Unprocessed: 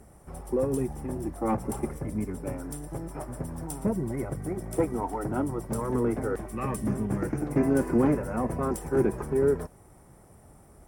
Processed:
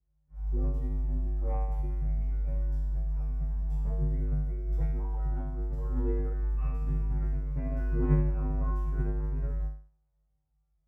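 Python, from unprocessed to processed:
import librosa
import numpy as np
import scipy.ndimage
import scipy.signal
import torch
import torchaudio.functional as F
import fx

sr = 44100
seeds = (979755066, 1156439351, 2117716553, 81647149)

y = scipy.signal.lfilter(np.full(5, 1.0 / 5), 1.0, x)
y = fx.low_shelf_res(y, sr, hz=170.0, db=13.5, q=1.5)
y = fx.comb_fb(y, sr, f0_hz=51.0, decay_s=1.2, harmonics='odd', damping=0.0, mix_pct=100)
y = fx.upward_expand(y, sr, threshold_db=-47.0, expansion=2.5)
y = y * 10.0 ** (9.0 / 20.0)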